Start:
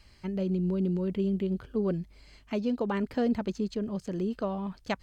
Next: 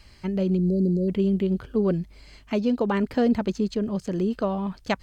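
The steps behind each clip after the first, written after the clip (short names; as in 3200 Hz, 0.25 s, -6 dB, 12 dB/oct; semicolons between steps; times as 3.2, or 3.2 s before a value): spectral delete 0.57–1.09, 730–3900 Hz; gain +6 dB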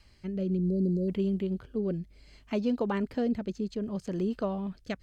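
rotary speaker horn 0.65 Hz; gain -5 dB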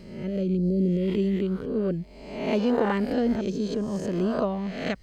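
spectral swells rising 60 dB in 0.86 s; gain +3.5 dB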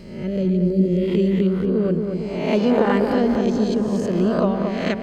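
darkening echo 0.228 s, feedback 65%, low-pass 1900 Hz, level -5 dB; gain +5 dB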